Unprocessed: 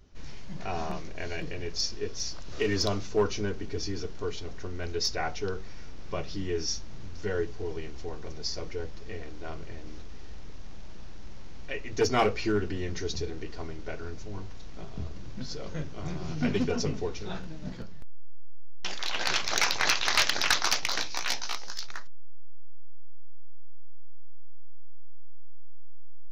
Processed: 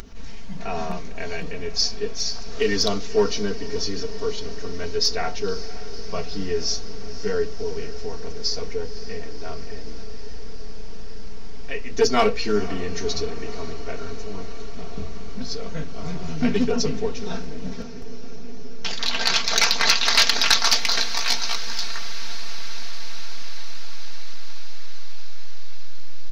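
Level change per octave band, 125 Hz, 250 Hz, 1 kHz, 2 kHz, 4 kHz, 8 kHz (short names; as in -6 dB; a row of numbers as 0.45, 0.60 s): +2.0, +5.5, +5.0, +5.0, +9.0, +7.0 dB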